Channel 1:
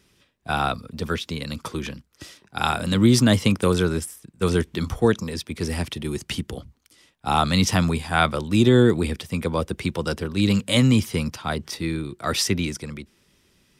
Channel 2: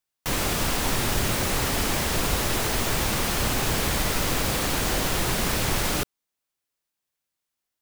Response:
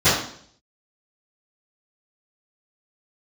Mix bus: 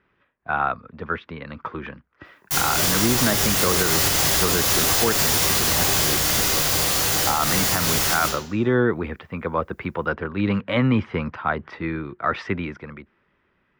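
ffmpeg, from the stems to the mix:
-filter_complex "[0:a]crystalizer=i=8:c=0,lowpass=frequency=1600:width=0.5412,lowpass=frequency=1600:width=1.3066,lowshelf=frequency=440:gain=-8,volume=-0.5dB[link_01];[1:a]equalizer=frequency=110:width_type=o:width=2.9:gain=-8.5,crystalizer=i=3:c=0,adelay=2250,volume=-10.5dB,asplit=2[link_02][link_03];[link_03]volume=-12.5dB[link_04];[2:a]atrim=start_sample=2205[link_05];[link_04][link_05]afir=irnorm=-1:irlink=0[link_06];[link_01][link_02][link_06]amix=inputs=3:normalize=0,dynaudnorm=framelen=380:gausssize=9:maxgain=5.5dB,alimiter=limit=-8.5dB:level=0:latency=1:release=112"

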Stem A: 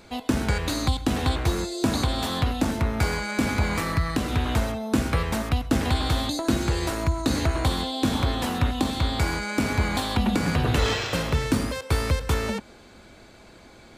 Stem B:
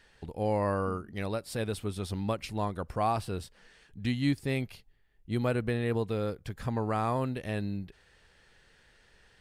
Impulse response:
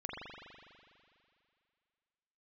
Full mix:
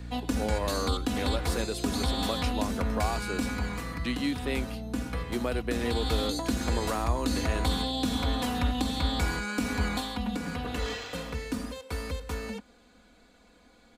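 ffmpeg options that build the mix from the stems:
-filter_complex "[0:a]aecho=1:1:4.1:0.79,volume=1dB,afade=type=out:start_time=3.23:duration=0.54:silence=0.473151,afade=type=in:start_time=5.55:duration=0.74:silence=0.446684,afade=type=out:start_time=9.85:duration=0.29:silence=0.473151[link_01];[1:a]highpass=frequency=240:width=0.5412,highpass=frequency=240:width=1.3066,aeval=exprs='val(0)+0.00891*(sin(2*PI*60*n/s)+sin(2*PI*2*60*n/s)/2+sin(2*PI*3*60*n/s)/3+sin(2*PI*4*60*n/s)/4+sin(2*PI*5*60*n/s)/5)':channel_layout=same,volume=3dB[link_02];[link_01][link_02]amix=inputs=2:normalize=0,acrossover=split=150|3000[link_03][link_04][link_05];[link_04]acompressor=threshold=-27dB:ratio=6[link_06];[link_03][link_06][link_05]amix=inputs=3:normalize=0"

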